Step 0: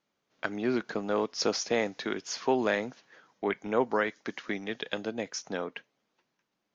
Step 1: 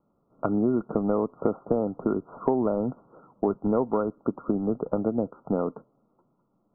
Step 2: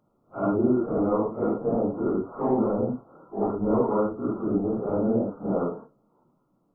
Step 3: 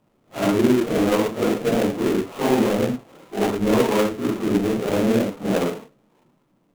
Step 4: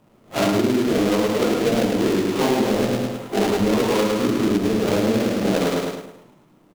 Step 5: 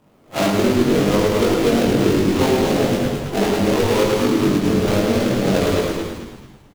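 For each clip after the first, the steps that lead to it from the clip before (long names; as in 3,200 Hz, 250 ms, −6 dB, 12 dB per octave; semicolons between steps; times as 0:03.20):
Chebyshev low-pass filter 1,400 Hz, order 10; spectral tilt −3 dB per octave; downward compressor 6 to 1, threshold −29 dBFS, peak gain reduction 11 dB; level +8.5 dB
random phases in long frames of 200 ms; level +2 dB
gap after every zero crossing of 0.26 ms; level +5 dB
repeating echo 105 ms, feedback 42%, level −4 dB; downward compressor, threshold −24 dBFS, peak gain reduction 12.5 dB; dynamic equaliser 4,600 Hz, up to +5 dB, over −52 dBFS, Q 1.2; level +7.5 dB
double-tracking delay 21 ms −3 dB; echo with shifted repeats 220 ms, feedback 36%, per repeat −100 Hz, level −6 dB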